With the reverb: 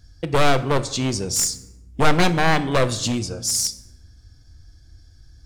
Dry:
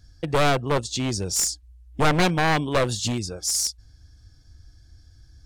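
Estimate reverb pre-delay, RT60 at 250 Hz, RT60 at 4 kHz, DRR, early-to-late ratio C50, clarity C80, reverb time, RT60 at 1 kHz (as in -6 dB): 4 ms, 1.6 s, 0.60 s, 11.5 dB, 15.0 dB, 17.5 dB, 1.0 s, 0.90 s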